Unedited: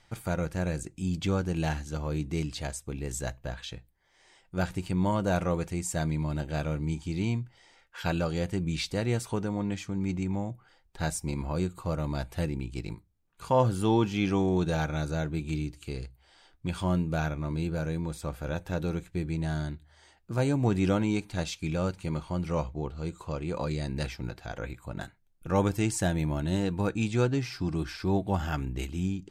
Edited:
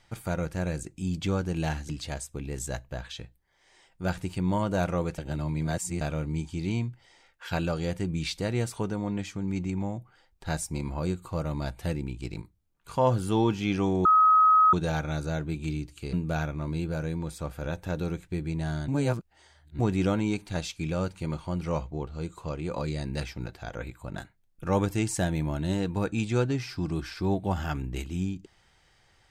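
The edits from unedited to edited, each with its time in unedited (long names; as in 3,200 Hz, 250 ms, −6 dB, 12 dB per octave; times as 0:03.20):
0:01.89–0:02.42: remove
0:05.71–0:06.54: reverse
0:14.58: insert tone 1,270 Hz −15.5 dBFS 0.68 s
0:15.98–0:16.96: remove
0:19.71–0:20.62: reverse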